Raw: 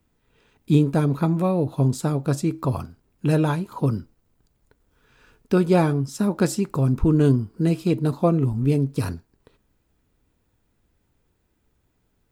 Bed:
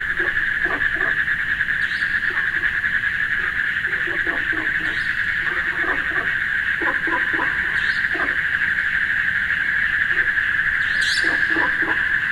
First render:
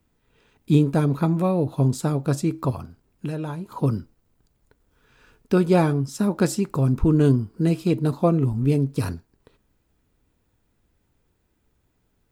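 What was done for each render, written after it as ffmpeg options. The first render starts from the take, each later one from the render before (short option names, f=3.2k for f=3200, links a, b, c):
-filter_complex "[0:a]asettb=1/sr,asplit=3[a][b][c];[a]atrim=end=2.704[d];[b]atrim=start=2.7:end=3.7,asetpts=PTS-STARTPTS,afade=t=in:d=0.004:c=qsin,afade=t=out:st=0.996:d=0.004:c=qsin,acrossover=split=1200|5900[e][f][g];[e]acompressor=threshold=-28dB:ratio=4[h];[f]acompressor=threshold=-47dB:ratio=4[i];[g]acompressor=threshold=-59dB:ratio=4[j];[h][i][j]amix=inputs=3:normalize=0[k];[c]atrim=start=3.696[l];[d][k]acrossfade=d=0.004:c1=hsin:c2=qsin[m];[m][l]acrossfade=d=0.004:c1=qsin:c2=hsin"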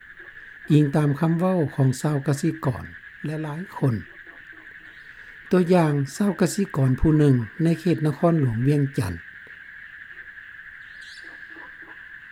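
-filter_complex "[1:a]volume=-22dB[a];[0:a][a]amix=inputs=2:normalize=0"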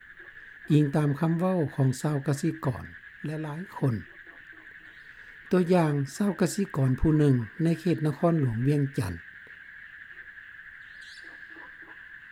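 -af "volume=-4.5dB"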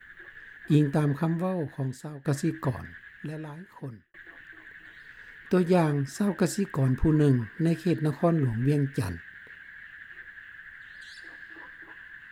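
-filter_complex "[0:a]asplit=3[a][b][c];[a]atrim=end=2.25,asetpts=PTS-STARTPTS,afade=t=out:st=1.08:d=1.17:silence=0.158489[d];[b]atrim=start=2.25:end=4.14,asetpts=PTS-STARTPTS,afade=t=in:d=0.004:c=hsin:silence=0.158489,afade=t=out:st=0.71:d=1.18[e];[c]atrim=start=4.14,asetpts=PTS-STARTPTS,afade=t=in:d=0.004:c=hsin[f];[d][e][f]concat=n=3:v=0:a=1"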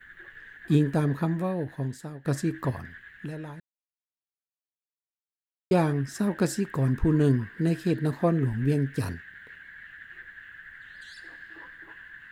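-filter_complex "[0:a]asplit=3[a][b][c];[a]atrim=end=3.6,asetpts=PTS-STARTPTS,afade=t=out:st=3.596:d=0.004:c=hsin[d];[b]atrim=start=3.6:end=5.71,asetpts=PTS-STARTPTS,volume=0[e];[c]atrim=start=5.71,asetpts=PTS-STARTPTS,afade=t=in:d=0.004:c=hsin[f];[d][e][f]concat=n=3:v=0:a=1"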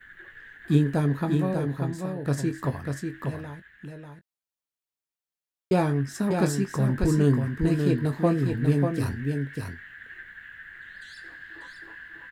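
-filter_complex "[0:a]asplit=2[a][b];[b]adelay=21,volume=-10dB[c];[a][c]amix=inputs=2:normalize=0,aecho=1:1:593:0.562"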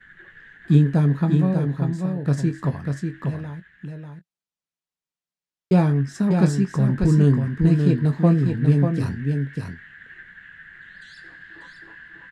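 -af "lowpass=7.9k,equalizer=f=170:w=2.3:g=10"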